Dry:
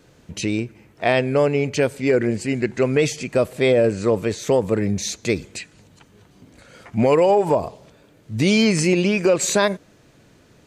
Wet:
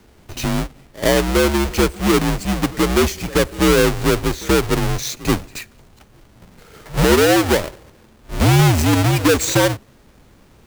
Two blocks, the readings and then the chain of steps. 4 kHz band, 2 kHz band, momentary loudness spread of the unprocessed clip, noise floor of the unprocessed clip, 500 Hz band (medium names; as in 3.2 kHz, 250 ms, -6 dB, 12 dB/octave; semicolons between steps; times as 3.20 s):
+6.0 dB, +4.0 dB, 11 LU, -54 dBFS, 0.0 dB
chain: square wave that keeps the level; reverse echo 81 ms -20 dB; frequency shift -74 Hz; trim -1.5 dB